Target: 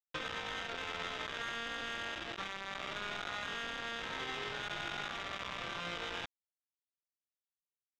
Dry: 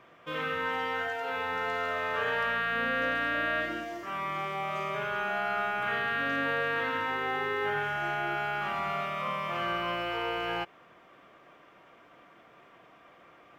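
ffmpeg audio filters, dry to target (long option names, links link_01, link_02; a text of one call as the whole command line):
ffmpeg -i in.wav -af "adynamicequalizer=threshold=0.00316:dfrequency=830:dqfactor=3.4:tfrequency=830:tqfactor=3.4:attack=5:release=100:ratio=0.375:range=2:mode=cutabove:tftype=bell,alimiter=level_in=5.5dB:limit=-24dB:level=0:latency=1:release=184,volume=-5.5dB,equalizer=frequency=1500:width_type=o:width=0.78:gain=5,acompressor=threshold=-45dB:ratio=5,aresample=8000,acrusher=bits=6:mix=0:aa=0.000001,aresample=44100,asoftclip=type=tanh:threshold=-39.5dB,atempo=1.7,volume=9dB" out.wav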